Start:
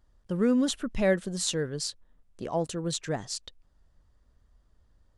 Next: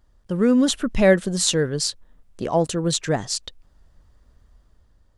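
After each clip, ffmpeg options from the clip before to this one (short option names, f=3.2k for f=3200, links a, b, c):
-af "dynaudnorm=f=130:g=9:m=4dB,volume=5dB"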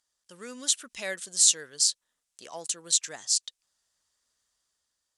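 -af "bandpass=f=7.7k:t=q:w=1.2:csg=0,volume=4dB"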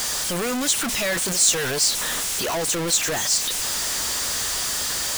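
-af "aeval=exprs='val(0)+0.5*0.126*sgn(val(0))':c=same,volume=-1dB"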